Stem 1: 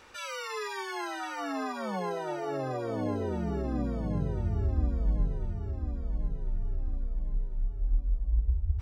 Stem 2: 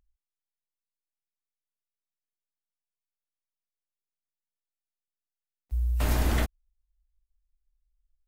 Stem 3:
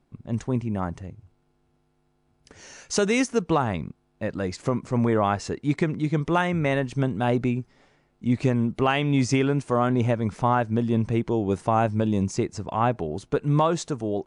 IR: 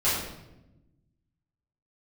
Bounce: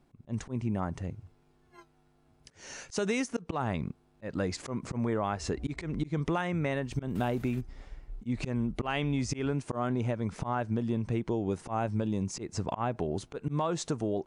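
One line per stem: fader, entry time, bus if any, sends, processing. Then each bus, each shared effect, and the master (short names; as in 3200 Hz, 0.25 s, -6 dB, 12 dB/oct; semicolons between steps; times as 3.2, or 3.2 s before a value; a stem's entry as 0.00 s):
0.0 dB, 0.75 s, bus A, no send, comb 2.9 ms, depth 96%; flange 1.7 Hz, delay 0.8 ms, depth 6.1 ms, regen -89%; auto duck -8 dB, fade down 0.70 s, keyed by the third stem
-10.5 dB, 1.15 s, bus A, no send, tilt shelf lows -4 dB
+1.5 dB, 0.00 s, no bus, no send, dry
bus A: 0.0 dB, gate -35 dBFS, range -36 dB; limiter -34.5 dBFS, peak gain reduction 10.5 dB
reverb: off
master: auto swell 0.215 s; compressor 6:1, threshold -27 dBFS, peak gain reduction 11.5 dB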